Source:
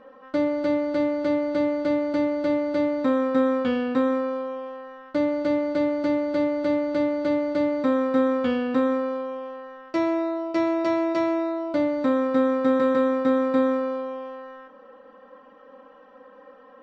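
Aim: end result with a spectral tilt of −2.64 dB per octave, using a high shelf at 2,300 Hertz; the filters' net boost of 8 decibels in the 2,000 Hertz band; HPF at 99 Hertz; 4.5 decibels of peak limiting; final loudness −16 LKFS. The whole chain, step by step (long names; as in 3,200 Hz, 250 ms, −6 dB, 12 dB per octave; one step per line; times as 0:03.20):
high-pass filter 99 Hz
parametric band 2,000 Hz +6.5 dB
high-shelf EQ 2,300 Hz +6 dB
level +8 dB
brickwall limiter −6.5 dBFS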